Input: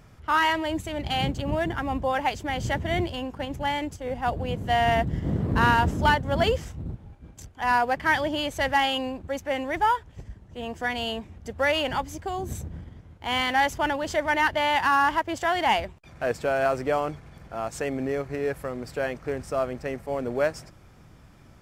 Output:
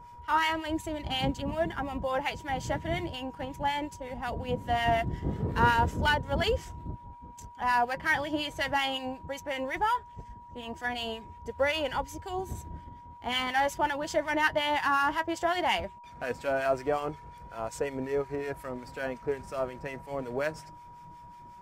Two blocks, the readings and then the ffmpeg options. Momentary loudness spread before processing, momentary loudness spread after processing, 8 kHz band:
12 LU, 16 LU, -3.5 dB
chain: -filter_complex "[0:a]flanger=delay=2:depth=4.5:regen=56:speed=0.17:shape=sinusoidal,acrossover=split=1300[a][b];[a]aeval=exprs='val(0)*(1-0.7/2+0.7/2*cos(2*PI*5.5*n/s))':c=same[c];[b]aeval=exprs='val(0)*(1-0.7/2-0.7/2*cos(2*PI*5.5*n/s))':c=same[d];[c][d]amix=inputs=2:normalize=0,aeval=exprs='val(0)+0.00316*sin(2*PI*960*n/s)':c=same,volume=3dB"

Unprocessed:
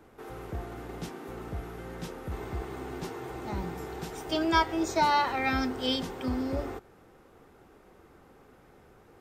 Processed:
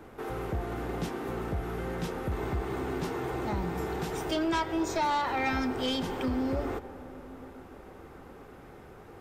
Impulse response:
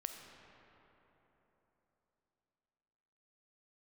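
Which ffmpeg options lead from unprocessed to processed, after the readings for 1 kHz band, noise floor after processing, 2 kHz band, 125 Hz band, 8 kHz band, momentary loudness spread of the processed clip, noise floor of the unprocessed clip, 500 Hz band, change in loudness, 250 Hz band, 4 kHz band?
-2.0 dB, -49 dBFS, -2.0 dB, +3.0 dB, 0.0 dB, 20 LU, -58 dBFS, +2.0 dB, -0.5 dB, +1.0 dB, -3.0 dB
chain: -filter_complex "[0:a]acompressor=threshold=-36dB:ratio=2,aeval=exprs='0.0794*sin(PI/2*1.78*val(0)/0.0794)':c=same,asplit=2[a][b];[1:a]atrim=start_sample=2205,asetrate=26460,aresample=44100,lowpass=4.4k[c];[b][c]afir=irnorm=-1:irlink=0,volume=-8dB[d];[a][d]amix=inputs=2:normalize=0,volume=-4.5dB"

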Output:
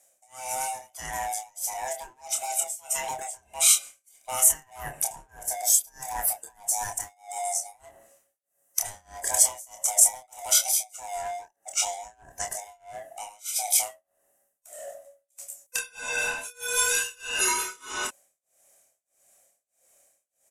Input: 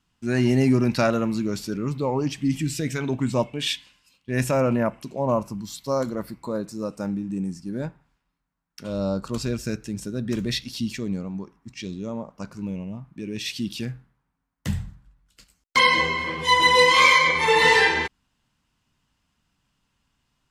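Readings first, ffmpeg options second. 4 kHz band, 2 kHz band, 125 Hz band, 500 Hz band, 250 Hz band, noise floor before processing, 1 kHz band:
-7.5 dB, -11.0 dB, under -25 dB, -13.5 dB, under -25 dB, -76 dBFS, -8.5 dB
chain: -filter_complex "[0:a]afftfilt=real='real(if(lt(b,1008),b+24*(1-2*mod(floor(b/24),2)),b),0)':imag='imag(if(lt(b,1008),b+24*(1-2*mod(floor(b/24),2)),b),0)':win_size=2048:overlap=0.75,dynaudnorm=f=740:g=9:m=4.5dB,asplit=2[a][b];[b]alimiter=limit=-12.5dB:level=0:latency=1:release=33,volume=-0.5dB[c];[a][c]amix=inputs=2:normalize=0,acompressor=threshold=-19dB:ratio=5,acrossover=split=1100[d][e];[d]asoftclip=type=tanh:threshold=-31dB[f];[e]lowpass=12k[g];[f][g]amix=inputs=2:normalize=0,tremolo=f=1.6:d=0.98,asplit=2[h][i];[i]adelay=27,volume=-5dB[j];[h][j]amix=inputs=2:normalize=0,aexciter=amount=15.7:drive=6:freq=6.6k,volume=-4.5dB"

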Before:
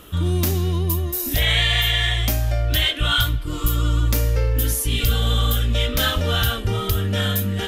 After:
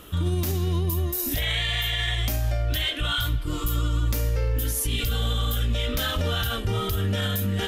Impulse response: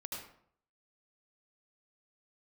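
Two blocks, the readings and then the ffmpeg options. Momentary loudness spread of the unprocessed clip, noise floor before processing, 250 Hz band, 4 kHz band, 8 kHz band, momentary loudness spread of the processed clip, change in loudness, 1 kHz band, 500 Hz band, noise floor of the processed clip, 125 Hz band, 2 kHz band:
5 LU, -28 dBFS, -4.0 dB, -6.0 dB, -4.5 dB, 2 LU, -5.5 dB, -5.0 dB, -4.5 dB, -29 dBFS, -4.5 dB, -6.5 dB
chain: -af "alimiter=limit=-15.5dB:level=0:latency=1:release=32,volume=-1.5dB"

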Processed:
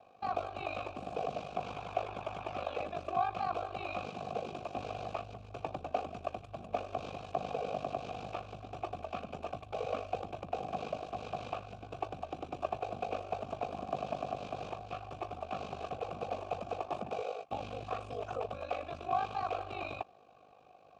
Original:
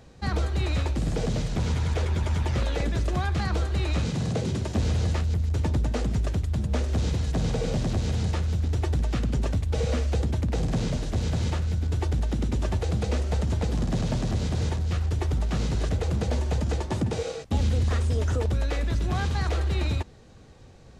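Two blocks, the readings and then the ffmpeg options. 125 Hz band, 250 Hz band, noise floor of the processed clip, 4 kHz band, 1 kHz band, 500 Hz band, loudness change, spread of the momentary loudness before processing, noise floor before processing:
-25.0 dB, -17.0 dB, -59 dBFS, -13.0 dB, +1.5 dB, -5.0 dB, -12.5 dB, 2 LU, -48 dBFS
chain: -filter_complex "[0:a]aeval=exprs='val(0)*sin(2*PI*25*n/s)':c=same,asplit=3[a][b][c];[a]bandpass=f=730:t=q:w=8,volume=0dB[d];[b]bandpass=f=1.09k:t=q:w=8,volume=-6dB[e];[c]bandpass=f=2.44k:t=q:w=8,volume=-9dB[f];[d][e][f]amix=inputs=3:normalize=0,volume=9.5dB"

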